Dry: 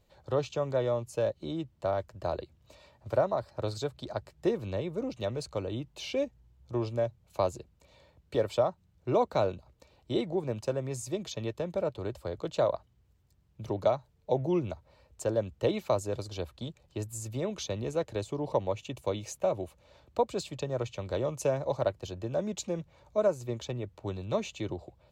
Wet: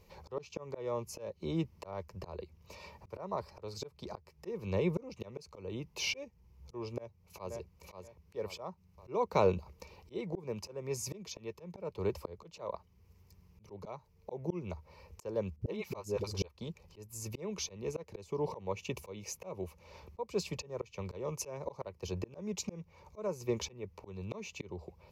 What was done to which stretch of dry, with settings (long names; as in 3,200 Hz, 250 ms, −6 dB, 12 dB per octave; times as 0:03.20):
0:06.91–0:07.54: delay throw 530 ms, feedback 20%, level −7 dB
0:15.56–0:16.50: all-pass dispersion highs, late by 55 ms, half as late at 370 Hz
whole clip: EQ curve with evenly spaced ripples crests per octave 0.82, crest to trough 10 dB; volume swells 610 ms; level +6 dB